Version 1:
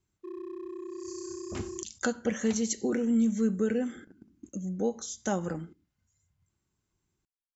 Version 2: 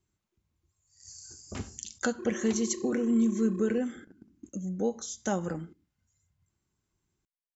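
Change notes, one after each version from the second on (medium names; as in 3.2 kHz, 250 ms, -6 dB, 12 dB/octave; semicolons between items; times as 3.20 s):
background: entry +1.95 s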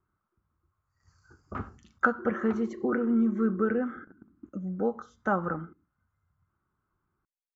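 background: add boxcar filter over 50 samples; master: add resonant low-pass 1.3 kHz, resonance Q 5.8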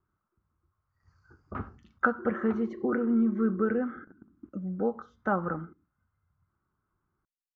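master: add distance through air 190 m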